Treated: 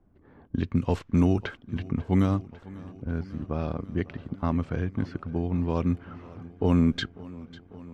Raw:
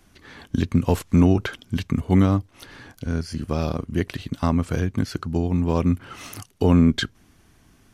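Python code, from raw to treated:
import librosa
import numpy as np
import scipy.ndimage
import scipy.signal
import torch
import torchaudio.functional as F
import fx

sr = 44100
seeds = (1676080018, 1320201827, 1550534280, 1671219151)

y = fx.env_lowpass(x, sr, base_hz=680.0, full_db=-11.5)
y = fx.echo_warbled(y, sr, ms=547, feedback_pct=76, rate_hz=2.8, cents=55, wet_db=-20)
y = F.gain(torch.from_numpy(y), -5.5).numpy()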